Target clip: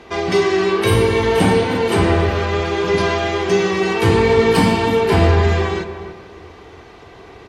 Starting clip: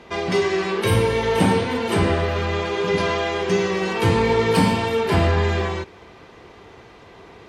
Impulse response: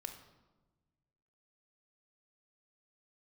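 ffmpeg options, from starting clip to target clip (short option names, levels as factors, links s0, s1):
-filter_complex "[0:a]asplit=2[s0][s1];[s1]adelay=289,lowpass=f=1200:p=1,volume=0.376,asplit=2[s2][s3];[s3]adelay=289,lowpass=f=1200:p=1,volume=0.34,asplit=2[s4][s5];[s5]adelay=289,lowpass=f=1200:p=1,volume=0.34,asplit=2[s6][s7];[s7]adelay=289,lowpass=f=1200:p=1,volume=0.34[s8];[s0][s2][s4][s6][s8]amix=inputs=5:normalize=0,asplit=2[s9][s10];[1:a]atrim=start_sample=2205,asetrate=36162,aresample=44100[s11];[s10][s11]afir=irnorm=-1:irlink=0,volume=1[s12];[s9][s12]amix=inputs=2:normalize=0,volume=0.891"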